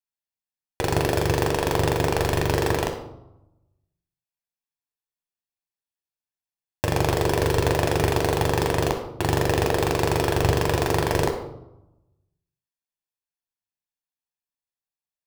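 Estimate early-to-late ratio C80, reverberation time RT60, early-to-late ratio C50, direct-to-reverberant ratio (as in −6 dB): 10.5 dB, 0.90 s, 7.0 dB, 3.5 dB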